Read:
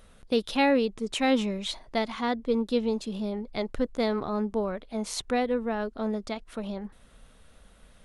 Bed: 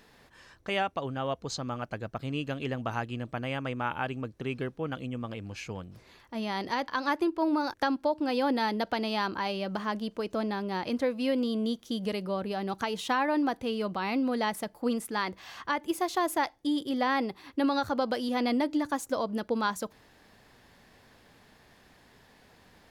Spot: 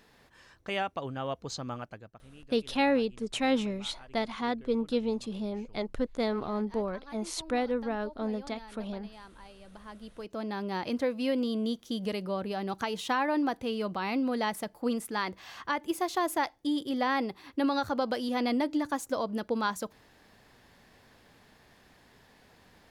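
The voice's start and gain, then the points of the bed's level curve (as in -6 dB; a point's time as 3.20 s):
2.20 s, -3.0 dB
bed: 1.77 s -2.5 dB
2.25 s -20.5 dB
9.59 s -20.5 dB
10.63 s -1 dB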